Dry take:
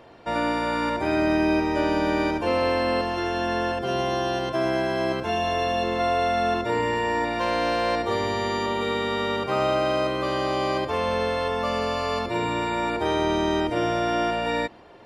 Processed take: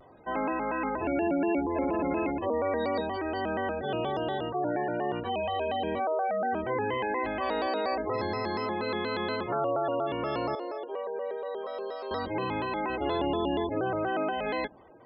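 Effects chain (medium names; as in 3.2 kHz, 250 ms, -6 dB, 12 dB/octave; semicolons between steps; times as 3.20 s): spectral gate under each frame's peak -15 dB strong; 10.55–12.11 s: ladder high-pass 380 Hz, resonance 55%; vibrato with a chosen wave square 4.2 Hz, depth 160 cents; trim -5 dB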